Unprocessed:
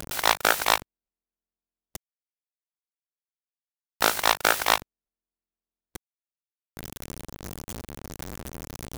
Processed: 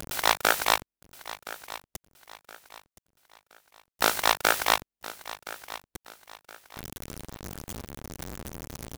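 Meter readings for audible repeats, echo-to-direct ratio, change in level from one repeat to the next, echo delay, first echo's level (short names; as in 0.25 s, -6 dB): 3, -15.5 dB, -9.0 dB, 1.02 s, -16.0 dB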